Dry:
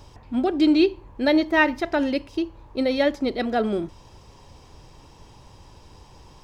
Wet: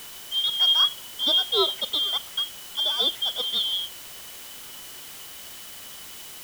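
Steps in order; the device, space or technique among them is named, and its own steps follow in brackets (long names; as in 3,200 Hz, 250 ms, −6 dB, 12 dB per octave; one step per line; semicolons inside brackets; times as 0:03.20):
split-band scrambled radio (band-splitting scrambler in four parts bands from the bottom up 2413; band-pass filter 390–3,300 Hz; white noise bed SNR 14 dB)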